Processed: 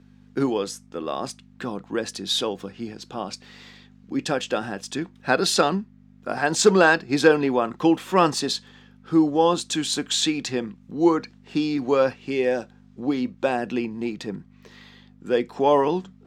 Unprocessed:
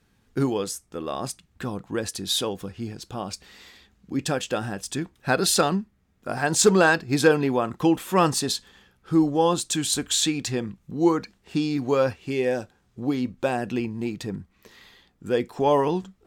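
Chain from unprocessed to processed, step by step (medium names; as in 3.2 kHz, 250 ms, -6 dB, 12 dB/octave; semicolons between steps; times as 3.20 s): hum 50 Hz, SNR 18 dB; three-band isolator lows -19 dB, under 160 Hz, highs -13 dB, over 6.7 kHz; trim +2 dB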